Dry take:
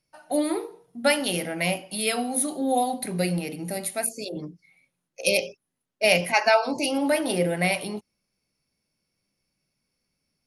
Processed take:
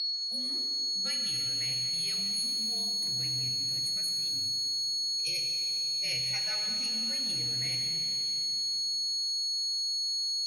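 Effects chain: amplifier tone stack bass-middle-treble 6-0-2; whistle 4.4 kHz -29 dBFS; frequency shift -49 Hz; pitch-shifted reverb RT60 3 s, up +7 st, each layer -8 dB, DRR 3 dB

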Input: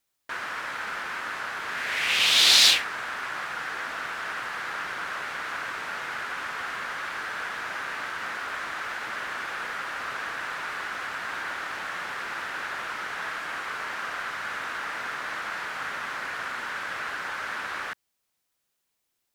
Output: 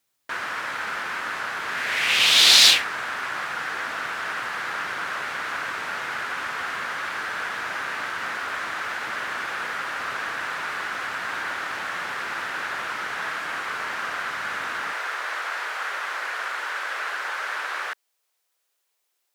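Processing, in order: high-pass 64 Hz 24 dB/octave, from 14.93 s 390 Hz; trim +3.5 dB

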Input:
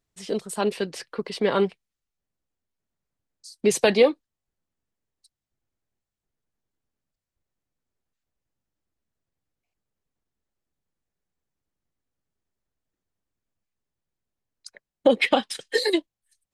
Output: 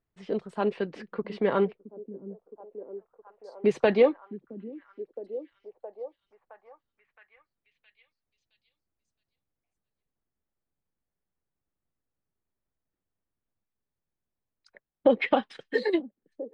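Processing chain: low-pass 2 kHz 12 dB/octave; repeats whose band climbs or falls 667 ms, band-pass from 240 Hz, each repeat 0.7 oct, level -11.5 dB; trim -2.5 dB

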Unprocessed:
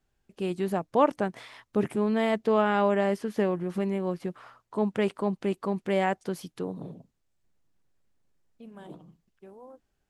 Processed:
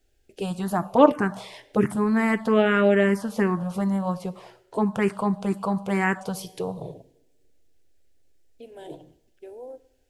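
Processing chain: two-slope reverb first 0.68 s, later 1.8 s, from -17 dB, DRR 12.5 dB; touch-sensitive phaser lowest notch 180 Hz, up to 2.9 kHz, full sweep at -14.5 dBFS; trim +9 dB

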